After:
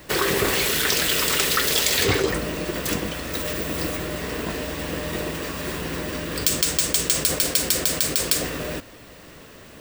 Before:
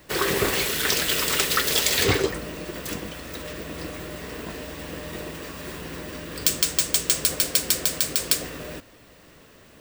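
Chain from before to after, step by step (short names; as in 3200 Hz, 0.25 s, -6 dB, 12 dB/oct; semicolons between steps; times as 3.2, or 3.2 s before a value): 3.35–3.97 high shelf 7700 Hz +7 dB; in parallel at -1 dB: negative-ratio compressor -29 dBFS, ratio -1; on the sum: gain -1 dB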